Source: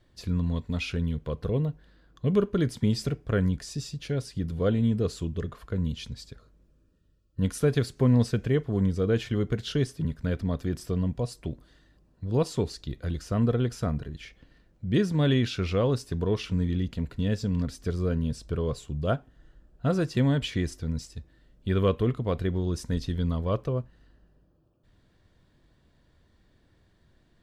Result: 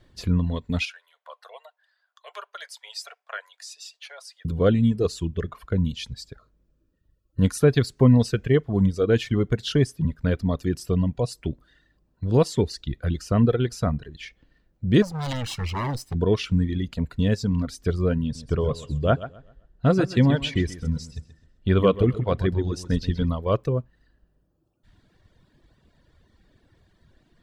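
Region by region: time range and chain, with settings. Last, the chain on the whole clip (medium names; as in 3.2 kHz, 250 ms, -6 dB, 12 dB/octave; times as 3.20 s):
0.85–4.45 s: steep high-pass 640 Hz 48 dB/octave + flange 1.3 Hz, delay 4.3 ms, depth 1.1 ms, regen -67%
15.02–16.15 s: comb filter that takes the minimum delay 1 ms + overload inside the chain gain 29 dB
18.22–23.29 s: treble shelf 9.1 kHz -11 dB + feedback delay 130 ms, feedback 35%, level -7.5 dB
whole clip: reverb removal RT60 1.5 s; treble shelf 9.4 kHz -3.5 dB; trim +6.5 dB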